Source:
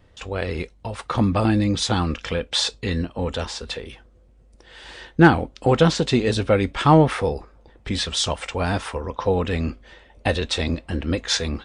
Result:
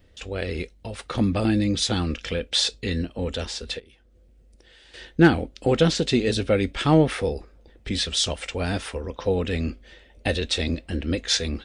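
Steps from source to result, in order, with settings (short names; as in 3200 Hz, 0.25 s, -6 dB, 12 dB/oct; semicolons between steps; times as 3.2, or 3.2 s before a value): high shelf 7300 Hz +6.5 dB; 3.79–4.94 compressor 8:1, threshold -48 dBFS, peak gain reduction 15.5 dB; graphic EQ 125/1000/8000 Hz -5/-11/-4 dB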